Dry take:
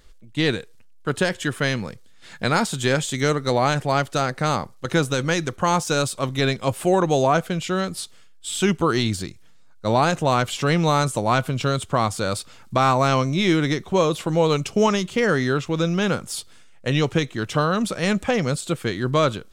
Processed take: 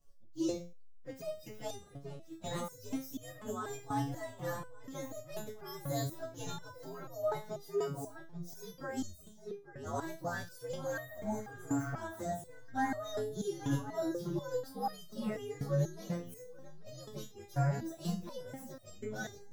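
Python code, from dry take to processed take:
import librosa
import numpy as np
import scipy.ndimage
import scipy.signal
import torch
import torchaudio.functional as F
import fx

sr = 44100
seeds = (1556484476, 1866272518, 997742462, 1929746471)

p1 = fx.partial_stretch(x, sr, pct=121)
p2 = fx.low_shelf(p1, sr, hz=490.0, db=3.5)
p3 = p2 + fx.echo_filtered(p2, sr, ms=840, feedback_pct=31, hz=3300.0, wet_db=-10.0, dry=0)
p4 = fx.spec_repair(p3, sr, seeds[0], start_s=11.11, length_s=0.79, low_hz=1000.0, high_hz=5800.0, source='both')
p5 = fx.peak_eq(p4, sr, hz=2300.0, db=-12.5, octaves=0.71)
p6 = fx.hum_notches(p5, sr, base_hz=60, count=3)
p7 = fx.resonator_held(p6, sr, hz=4.1, low_hz=140.0, high_hz=620.0)
y = F.gain(torch.from_numpy(p7), -2.0).numpy()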